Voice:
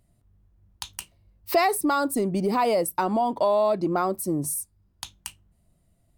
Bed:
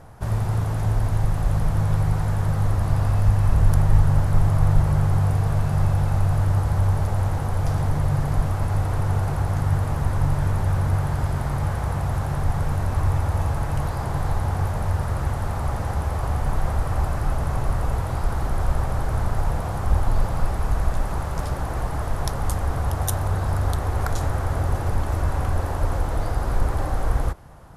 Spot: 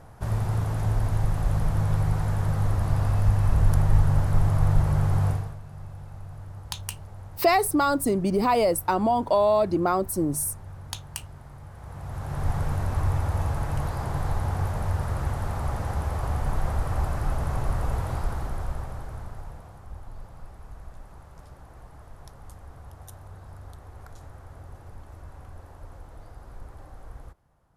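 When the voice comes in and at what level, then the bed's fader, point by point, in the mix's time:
5.90 s, +1.0 dB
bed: 0:05.30 −3 dB
0:05.59 −20 dB
0:11.69 −20 dB
0:12.47 −3.5 dB
0:18.13 −3.5 dB
0:19.87 −21 dB

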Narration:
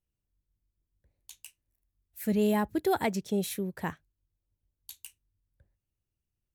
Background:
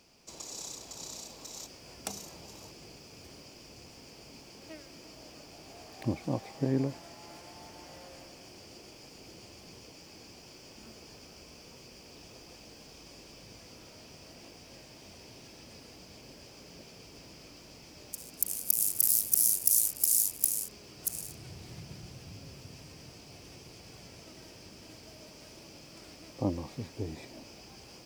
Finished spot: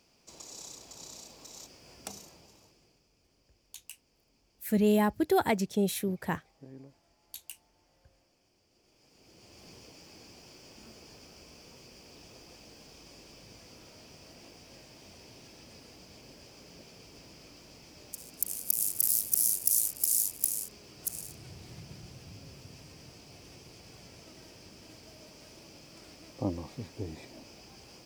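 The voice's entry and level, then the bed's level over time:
2.45 s, +1.5 dB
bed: 0:02.15 −4 dB
0:03.13 −20.5 dB
0:08.69 −20.5 dB
0:09.65 −1.5 dB

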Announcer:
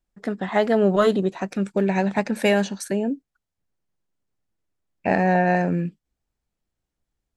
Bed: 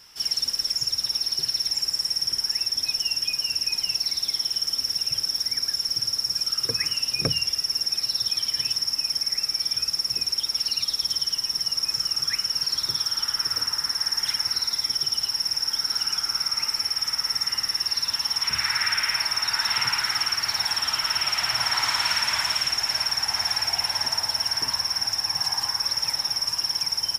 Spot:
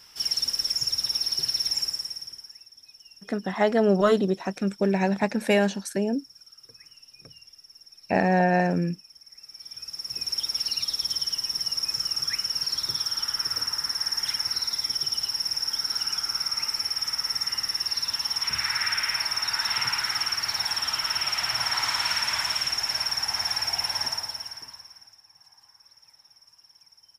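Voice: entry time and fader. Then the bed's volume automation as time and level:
3.05 s, −2.0 dB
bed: 0:01.81 −1 dB
0:02.68 −25 dB
0:09.23 −25 dB
0:10.36 −2.5 dB
0:24.06 −2.5 dB
0:25.24 −30 dB

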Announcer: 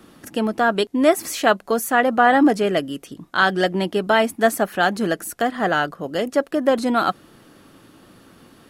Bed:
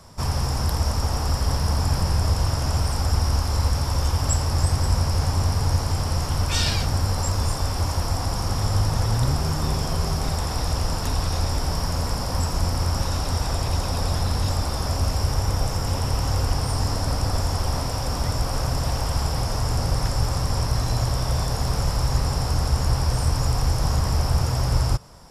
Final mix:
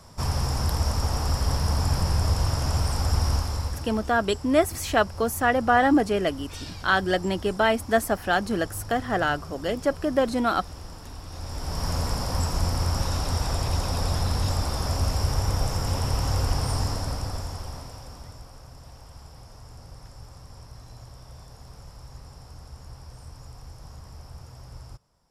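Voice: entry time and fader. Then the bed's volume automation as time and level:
3.50 s, −4.5 dB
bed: 0:03.33 −2 dB
0:04.11 −16.5 dB
0:11.25 −16.5 dB
0:11.89 −2 dB
0:16.75 −2 dB
0:18.60 −22 dB

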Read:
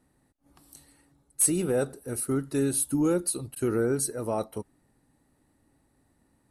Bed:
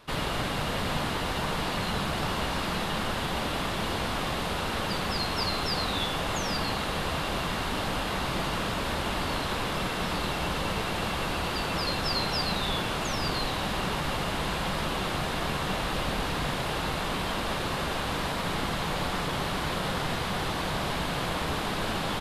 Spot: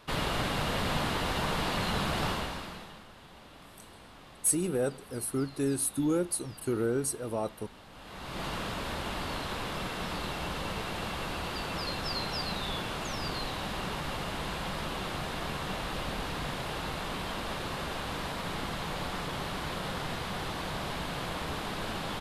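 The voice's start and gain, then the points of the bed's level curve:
3.05 s, −3.5 dB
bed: 0:02.28 −1 dB
0:03.07 −22 dB
0:07.89 −22 dB
0:08.45 −5.5 dB

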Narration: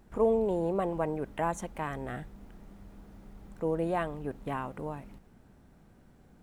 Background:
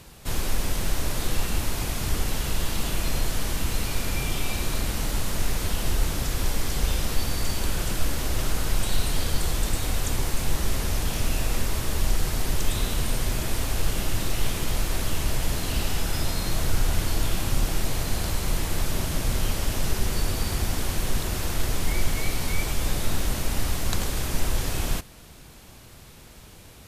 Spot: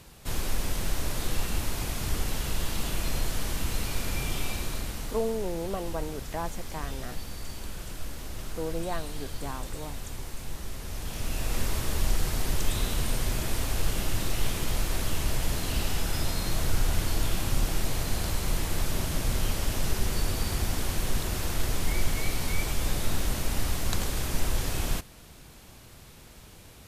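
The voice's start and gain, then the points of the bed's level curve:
4.95 s, −3.5 dB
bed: 0:04.44 −3.5 dB
0:05.44 −12 dB
0:10.79 −12 dB
0:11.63 −2.5 dB

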